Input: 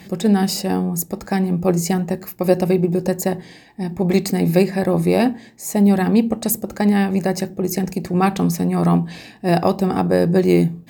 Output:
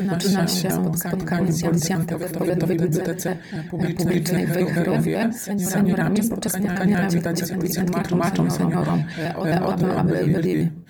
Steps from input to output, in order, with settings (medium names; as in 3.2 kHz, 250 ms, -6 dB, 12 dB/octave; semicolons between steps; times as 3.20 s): pitch shift switched off and on -2 st, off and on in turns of 78 ms; peaking EQ 1.7 kHz +7 dB 0.4 oct; peak limiter -13 dBFS, peak gain reduction 11.5 dB; reverse echo 266 ms -4.5 dB; attacks held to a fixed rise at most 430 dB/s